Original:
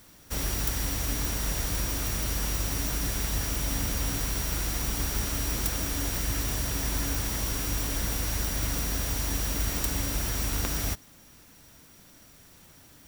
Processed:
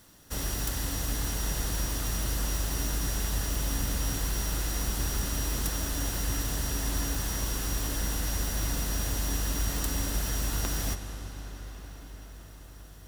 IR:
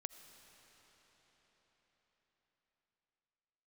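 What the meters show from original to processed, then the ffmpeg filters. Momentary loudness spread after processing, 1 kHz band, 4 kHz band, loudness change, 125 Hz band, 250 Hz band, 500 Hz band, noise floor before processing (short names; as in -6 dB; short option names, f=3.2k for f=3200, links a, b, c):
13 LU, -1.0 dB, -1.5 dB, -2.0 dB, -0.5 dB, -1.0 dB, -1.0 dB, -54 dBFS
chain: -filter_complex "[0:a]bandreject=f=2.3k:w=7.7[a];[1:a]atrim=start_sample=2205,asetrate=26901,aresample=44100[b];[a][b]afir=irnorm=-1:irlink=0"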